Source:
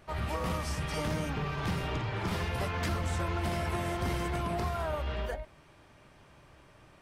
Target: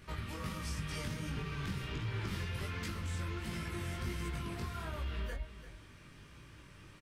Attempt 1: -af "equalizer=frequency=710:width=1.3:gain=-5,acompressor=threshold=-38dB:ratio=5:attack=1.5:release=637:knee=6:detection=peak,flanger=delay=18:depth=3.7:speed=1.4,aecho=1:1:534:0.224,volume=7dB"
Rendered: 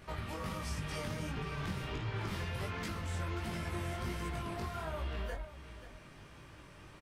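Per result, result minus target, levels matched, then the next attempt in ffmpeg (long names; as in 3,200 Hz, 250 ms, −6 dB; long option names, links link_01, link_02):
echo 192 ms late; 1,000 Hz band +3.5 dB
-af "equalizer=frequency=710:width=1.3:gain=-5,acompressor=threshold=-38dB:ratio=5:attack=1.5:release=637:knee=6:detection=peak,flanger=delay=18:depth=3.7:speed=1.4,aecho=1:1:342:0.224,volume=7dB"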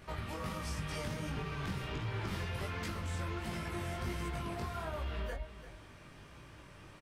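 1,000 Hz band +3.5 dB
-af "equalizer=frequency=710:width=1.3:gain=-14.5,acompressor=threshold=-38dB:ratio=5:attack=1.5:release=637:knee=6:detection=peak,flanger=delay=18:depth=3.7:speed=1.4,aecho=1:1:342:0.224,volume=7dB"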